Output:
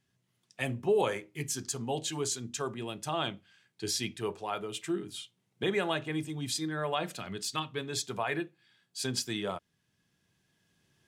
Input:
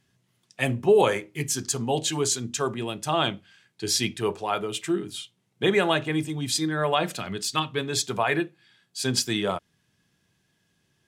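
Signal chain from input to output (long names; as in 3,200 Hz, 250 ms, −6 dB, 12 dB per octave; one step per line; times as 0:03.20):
camcorder AGC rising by 5.2 dB per second
level −8.5 dB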